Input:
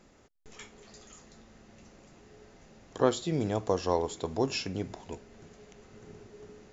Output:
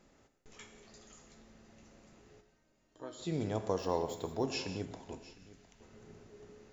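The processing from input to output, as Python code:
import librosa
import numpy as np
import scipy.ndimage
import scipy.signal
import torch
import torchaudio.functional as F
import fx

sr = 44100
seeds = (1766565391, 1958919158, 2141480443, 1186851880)

y = fx.comb_fb(x, sr, f0_hz=310.0, decay_s=0.36, harmonics='all', damping=0.0, mix_pct=90, at=(2.4, 3.18), fade=0.02)
y = fx.peak_eq(y, sr, hz=420.0, db=-13.5, octaves=2.4, at=(5.18, 5.81))
y = y + 10.0 ** (-18.5 / 20.0) * np.pad(y, (int(708 * sr / 1000.0), 0))[:len(y)]
y = fx.rev_gated(y, sr, seeds[0], gate_ms=210, shape='flat', drr_db=8.0)
y = fx.resample_linear(y, sr, factor=2, at=(3.78, 4.45))
y = y * 10.0 ** (-5.5 / 20.0)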